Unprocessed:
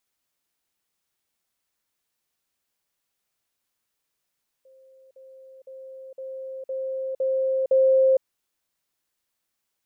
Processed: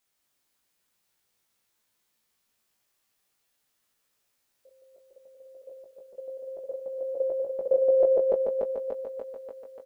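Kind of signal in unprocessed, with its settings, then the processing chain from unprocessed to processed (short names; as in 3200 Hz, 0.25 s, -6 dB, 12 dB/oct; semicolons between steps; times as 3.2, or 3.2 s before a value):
level ladder 528 Hz -50.5 dBFS, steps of 6 dB, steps 7, 0.46 s 0.05 s
regenerating reverse delay 0.146 s, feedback 77%, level -4.5 dB; early reflections 18 ms -3 dB, 34 ms -14.5 dB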